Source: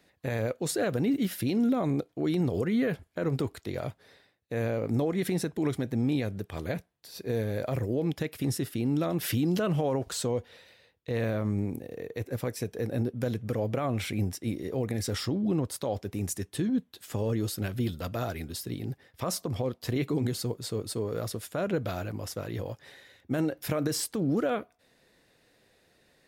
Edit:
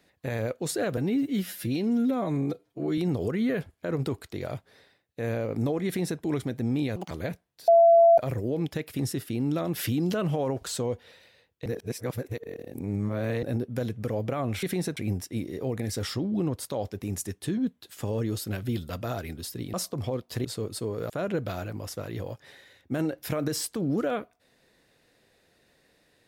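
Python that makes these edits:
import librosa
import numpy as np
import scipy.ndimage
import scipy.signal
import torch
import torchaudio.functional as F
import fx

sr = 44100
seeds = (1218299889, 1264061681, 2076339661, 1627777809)

y = fx.edit(x, sr, fx.stretch_span(start_s=0.97, length_s=1.34, factor=1.5),
    fx.duplicate(start_s=5.19, length_s=0.34, to_s=14.08),
    fx.speed_span(start_s=6.29, length_s=0.27, speed=1.83),
    fx.bleep(start_s=7.13, length_s=0.5, hz=674.0, db=-13.0),
    fx.reverse_span(start_s=11.11, length_s=1.77),
    fx.cut(start_s=18.85, length_s=0.41),
    fx.cut(start_s=19.97, length_s=0.62),
    fx.cut(start_s=21.24, length_s=0.25), tone=tone)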